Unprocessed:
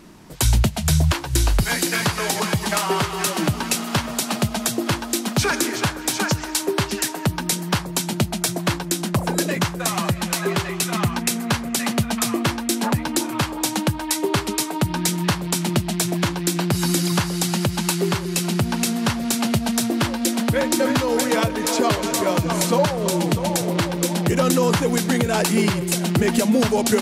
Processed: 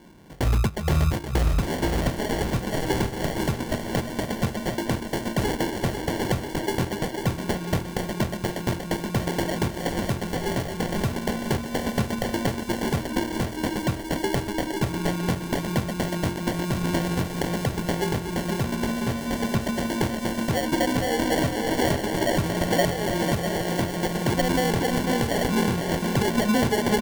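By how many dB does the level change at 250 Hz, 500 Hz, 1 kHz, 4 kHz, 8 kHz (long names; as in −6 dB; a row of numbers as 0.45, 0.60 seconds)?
−3.5, −3.0, −3.5, −7.5, −12.0 decibels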